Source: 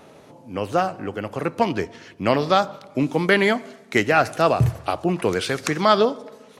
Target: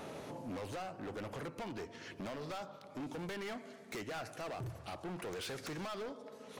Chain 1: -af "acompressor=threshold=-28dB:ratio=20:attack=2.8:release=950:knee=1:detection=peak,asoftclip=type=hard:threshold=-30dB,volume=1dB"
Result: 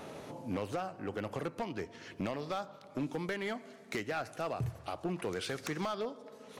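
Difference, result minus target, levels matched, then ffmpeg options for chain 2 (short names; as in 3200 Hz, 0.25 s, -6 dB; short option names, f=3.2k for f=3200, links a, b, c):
hard clip: distortion -10 dB
-af "acompressor=threshold=-28dB:ratio=20:attack=2.8:release=950:knee=1:detection=peak,asoftclip=type=hard:threshold=-40.5dB,volume=1dB"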